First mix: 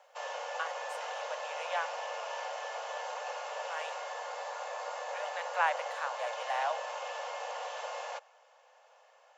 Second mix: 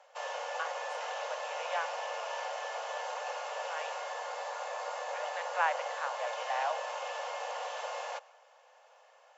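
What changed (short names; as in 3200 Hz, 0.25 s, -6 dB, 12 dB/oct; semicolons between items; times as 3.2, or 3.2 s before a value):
speech: add air absorption 110 m; background: send +10.0 dB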